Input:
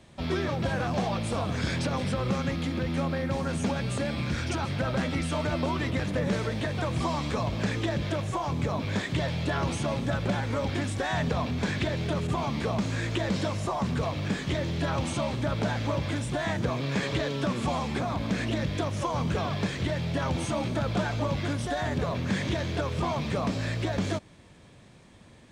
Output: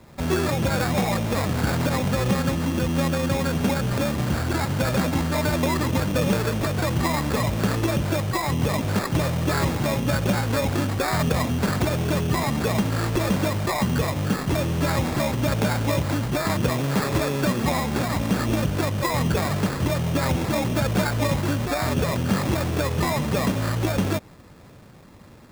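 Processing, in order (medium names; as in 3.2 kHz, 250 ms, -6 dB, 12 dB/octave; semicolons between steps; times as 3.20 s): band-stop 690 Hz, Q 12; sample-rate reducer 3 kHz, jitter 0%; trim +6 dB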